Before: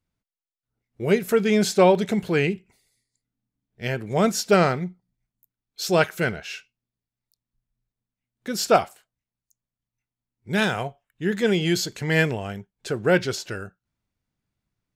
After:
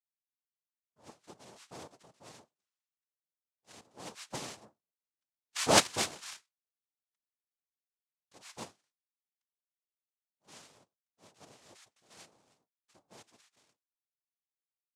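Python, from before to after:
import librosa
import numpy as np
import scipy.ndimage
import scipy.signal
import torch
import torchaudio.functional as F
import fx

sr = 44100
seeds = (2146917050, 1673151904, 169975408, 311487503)

y = fx.doppler_pass(x, sr, speed_mps=14, closest_m=2.2, pass_at_s=5.79)
y = fx.highpass(y, sr, hz=810.0, slope=6)
y = fx.noise_vocoder(y, sr, seeds[0], bands=2)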